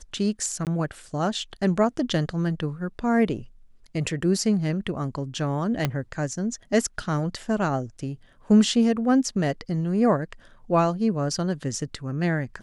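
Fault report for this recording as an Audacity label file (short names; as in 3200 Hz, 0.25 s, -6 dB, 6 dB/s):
0.650000	0.670000	gap 18 ms
5.850000	5.850000	pop -9 dBFS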